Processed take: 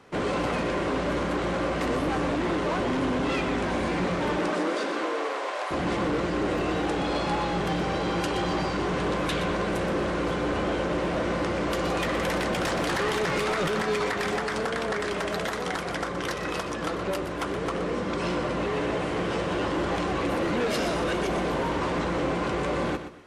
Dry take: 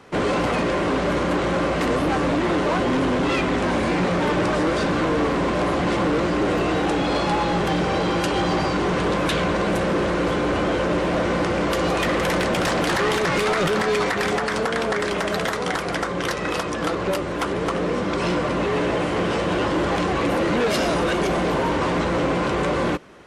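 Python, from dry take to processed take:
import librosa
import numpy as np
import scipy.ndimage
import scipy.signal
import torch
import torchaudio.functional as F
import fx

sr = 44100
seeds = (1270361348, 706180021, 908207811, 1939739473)

y = fx.highpass(x, sr, hz=fx.line((4.36, 170.0), (5.7, 630.0)), slope=24, at=(4.36, 5.7), fade=0.02)
y = fx.echo_feedback(y, sr, ms=122, feedback_pct=25, wet_db=-10.0)
y = y * 10.0 ** (-6.0 / 20.0)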